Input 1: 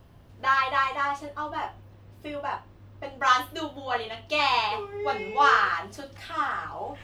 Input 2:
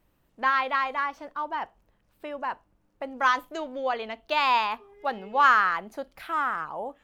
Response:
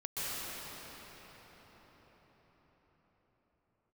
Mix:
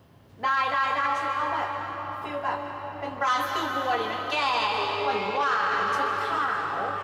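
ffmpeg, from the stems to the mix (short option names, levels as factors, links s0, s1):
-filter_complex "[0:a]asoftclip=type=tanh:threshold=0.211,volume=0.891,asplit=2[s0][s1];[s1]volume=0.501[s2];[1:a]lowpass=f=2000:w=0.5412,lowpass=f=2000:w=1.3066,adelay=1.9,volume=0.631[s3];[2:a]atrim=start_sample=2205[s4];[s2][s4]afir=irnorm=-1:irlink=0[s5];[s0][s3][s5]amix=inputs=3:normalize=0,highpass=110,alimiter=limit=0.15:level=0:latency=1:release=40"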